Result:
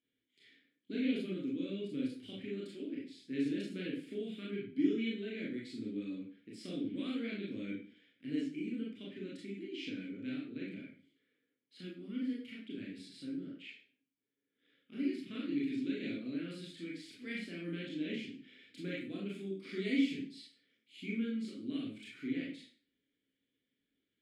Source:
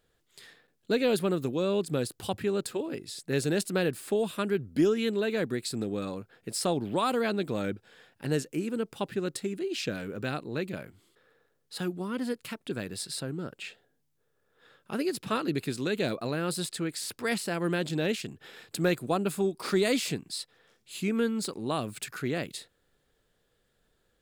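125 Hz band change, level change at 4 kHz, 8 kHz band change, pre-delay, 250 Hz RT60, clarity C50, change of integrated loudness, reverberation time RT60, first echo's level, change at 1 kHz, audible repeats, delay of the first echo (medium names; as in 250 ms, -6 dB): -13.5 dB, -11.5 dB, under -25 dB, 24 ms, 0.45 s, 3.0 dB, -9.0 dB, 0.45 s, no echo, -27.0 dB, no echo, no echo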